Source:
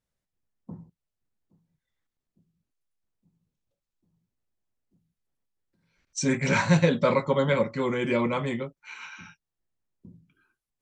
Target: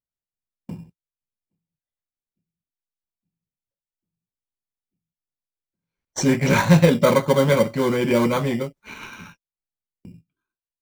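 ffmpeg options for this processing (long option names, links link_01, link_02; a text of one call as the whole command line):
ffmpeg -i in.wav -filter_complex "[0:a]agate=range=-21dB:threshold=-53dB:ratio=16:detection=peak,asplit=2[link_01][link_02];[link_02]acrusher=samples=17:mix=1:aa=0.000001,volume=-5dB[link_03];[link_01][link_03]amix=inputs=2:normalize=0,volume=3dB" out.wav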